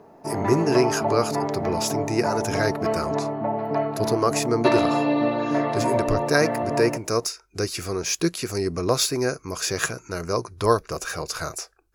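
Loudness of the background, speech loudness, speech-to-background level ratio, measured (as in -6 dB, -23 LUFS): -25.5 LUFS, -25.5 LUFS, 0.0 dB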